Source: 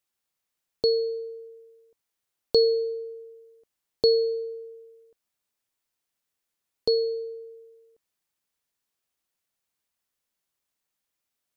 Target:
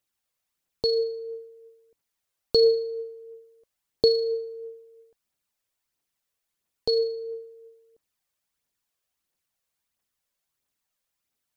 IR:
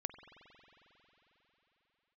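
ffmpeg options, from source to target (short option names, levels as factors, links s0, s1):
-af "aphaser=in_gain=1:out_gain=1:delay=2:decay=0.41:speed=1.5:type=triangular"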